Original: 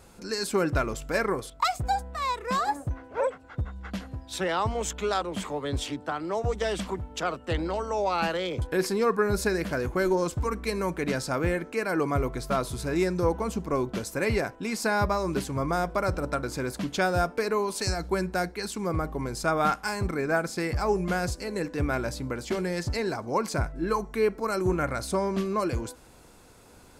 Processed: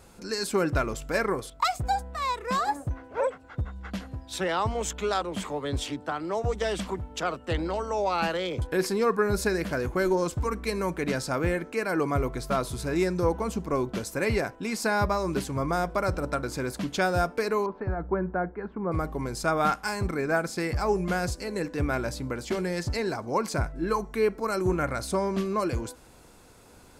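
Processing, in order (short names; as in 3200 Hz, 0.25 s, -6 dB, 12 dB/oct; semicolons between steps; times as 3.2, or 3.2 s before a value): 17.66–18.92 LPF 1500 Hz 24 dB/oct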